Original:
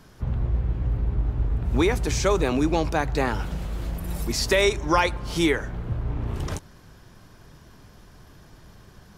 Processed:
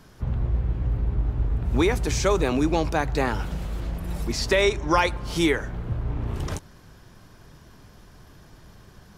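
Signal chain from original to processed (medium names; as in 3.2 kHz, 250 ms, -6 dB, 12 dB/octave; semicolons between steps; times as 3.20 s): 3.80–4.91 s: treble shelf 9 kHz -11.5 dB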